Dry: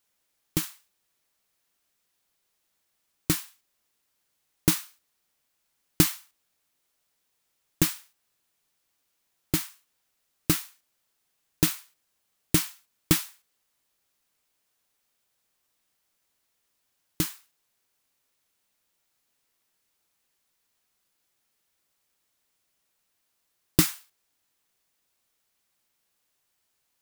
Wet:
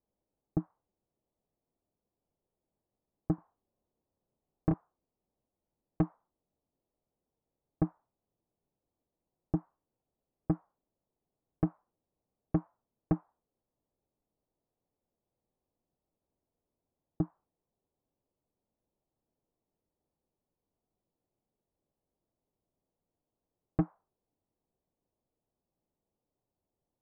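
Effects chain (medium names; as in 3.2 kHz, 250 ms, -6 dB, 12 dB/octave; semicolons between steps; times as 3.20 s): Bessel low-pass 520 Hz, order 6; saturation -23 dBFS, distortion -6 dB; 3.35–4.74 s: doubling 31 ms -3.5 dB; trim +3 dB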